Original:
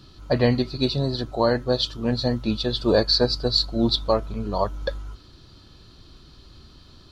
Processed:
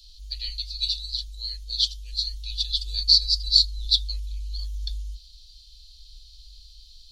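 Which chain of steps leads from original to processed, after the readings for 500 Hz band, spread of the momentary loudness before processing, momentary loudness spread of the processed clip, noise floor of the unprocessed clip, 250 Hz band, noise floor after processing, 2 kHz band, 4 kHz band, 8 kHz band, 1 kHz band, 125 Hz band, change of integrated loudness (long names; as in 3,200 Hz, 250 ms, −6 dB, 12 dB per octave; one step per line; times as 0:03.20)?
below −40 dB, 8 LU, 17 LU, −50 dBFS, below −40 dB, −50 dBFS, below −15 dB, +4.0 dB, +5.0 dB, below −40 dB, can't be measured, −0.5 dB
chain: inverse Chebyshev band-stop filter 120–1,500 Hz, stop band 50 dB
level +5 dB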